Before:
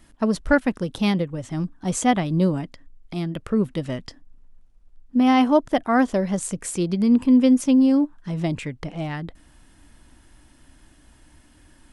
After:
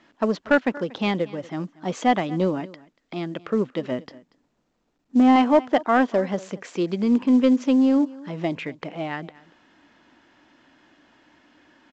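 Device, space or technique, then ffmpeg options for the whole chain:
telephone: -filter_complex "[0:a]asettb=1/sr,asplit=3[s0][s1][s2];[s0]atrim=end=3.914[s3];[s1]atrim=start=3.91:end=5.36,asetpts=PTS-STARTPTS,afade=t=in:d=0.004:c=qsin,afade=t=out:st=1.446:d=0.004:c=qsin,tiltshelf=f=840:g=5[s4];[s2]atrim=start=5.356[s5];[s3][s4]acrossfade=d=0.004:c1=hsin:c2=qsin[s6];[s6][s5]acrossfade=d=0.004:c1=qsin:c2=hsin,highpass=290,lowpass=3400,aecho=1:1:235:0.0841,asoftclip=type=tanh:threshold=0.316,volume=1.41" -ar 16000 -c:a pcm_mulaw

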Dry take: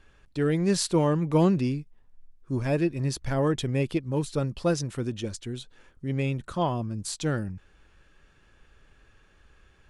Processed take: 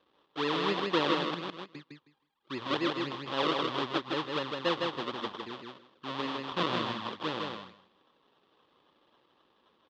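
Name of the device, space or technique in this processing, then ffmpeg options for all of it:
circuit-bent sampling toy: -filter_complex "[0:a]asettb=1/sr,asplit=3[s0][s1][s2];[s0]atrim=end=1.344[s3];[s1]atrim=start=1.34:end=1.75,asetpts=PTS-STARTPTS,afade=t=in:d=0.004:c=qsin,afade=t=out:st=0.406:d=0.004:c=qsin,agate=range=0.00794:threshold=0.158:ratio=16:detection=peak[s4];[s2]atrim=start=1.746[s5];[s3][s4]acrossfade=d=0.004:c1=hsin:c2=qsin[s6];[s6][s5]acrossfade=d=0.004:c1=qsin:c2=hsin,asettb=1/sr,asplit=3[s7][s8][s9];[s7]atrim=end=6.434[s10];[s8]atrim=start=6.43:end=6.93,asetpts=PTS-STARTPTS,afade=t=in:d=0.004:c=qsin,afade=t=out:st=0.496:d=0.004:c=qsin,lowshelf=f=220:g=10[s11];[s9]atrim=start=6.926[s12];[s10][s11]acrossfade=d=0.004:c1=hsin:c2=qsin[s13];[s13][s12]acrossfade=d=0.004:c1=qsin:c2=hsin,acrusher=samples=37:mix=1:aa=0.000001:lfo=1:lforange=37:lforate=3.8,highpass=420,equalizer=f=440:t=q:w=4:g=-3,equalizer=f=670:t=q:w=4:g=-9,equalizer=f=1100:t=q:w=4:g=5,equalizer=f=1500:t=q:w=4:g=-5,equalizer=f=2200:t=q:w=4:g=-7,equalizer=f=3400:t=q:w=4:g=7,lowpass=f=4000:w=0.5412,lowpass=f=4000:w=1.3066,aecho=1:1:158|316|474:0.668|0.114|0.0193"

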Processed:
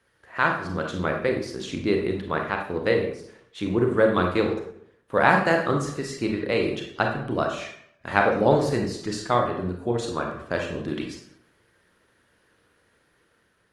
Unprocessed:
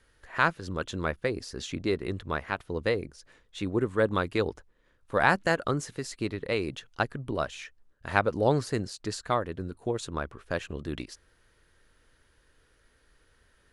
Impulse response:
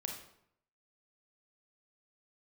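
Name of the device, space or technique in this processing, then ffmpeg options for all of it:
far-field microphone of a smart speaker: -filter_complex "[0:a]highshelf=f=5800:g=-6[s0];[1:a]atrim=start_sample=2205[s1];[s0][s1]afir=irnorm=-1:irlink=0,highpass=120,dynaudnorm=f=270:g=5:m=1.41,volume=1.5" -ar 48000 -c:a libopus -b:a 24k

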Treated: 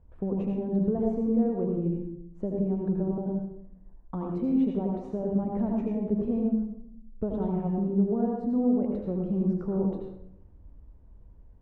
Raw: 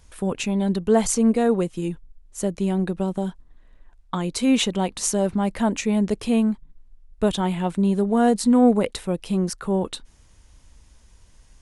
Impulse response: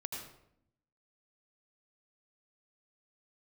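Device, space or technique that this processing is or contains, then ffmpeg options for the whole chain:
television next door: -filter_complex "[0:a]acompressor=threshold=0.0708:ratio=4,lowpass=590[s0];[1:a]atrim=start_sample=2205[s1];[s0][s1]afir=irnorm=-1:irlink=0"

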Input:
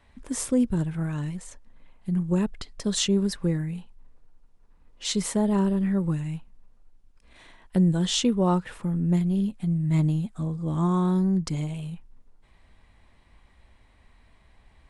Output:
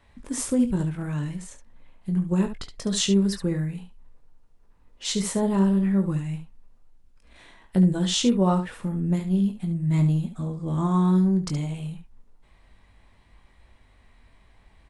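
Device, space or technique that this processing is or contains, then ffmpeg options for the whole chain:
slapback doubling: -filter_complex "[0:a]asplit=3[s0][s1][s2];[s1]adelay=21,volume=0.422[s3];[s2]adelay=71,volume=0.316[s4];[s0][s3][s4]amix=inputs=3:normalize=0"

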